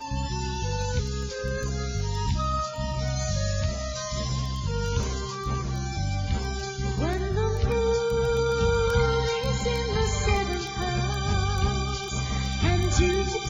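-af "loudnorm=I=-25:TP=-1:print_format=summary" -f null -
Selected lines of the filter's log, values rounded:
Input Integrated:    -26.9 LUFS
Input True Peak:      -8.6 dBTP
Input LRA:             4.0 LU
Input Threshold:     -36.9 LUFS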